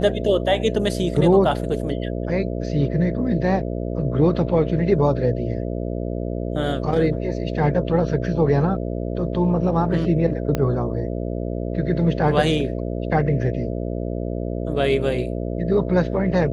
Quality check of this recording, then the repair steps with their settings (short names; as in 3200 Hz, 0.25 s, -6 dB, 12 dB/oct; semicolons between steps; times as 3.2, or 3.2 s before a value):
buzz 60 Hz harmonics 11 -26 dBFS
10.55 pop -9 dBFS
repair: de-click; de-hum 60 Hz, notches 11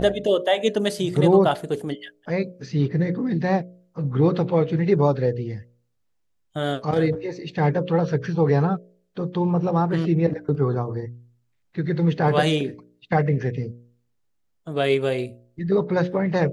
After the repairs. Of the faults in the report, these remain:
10.55 pop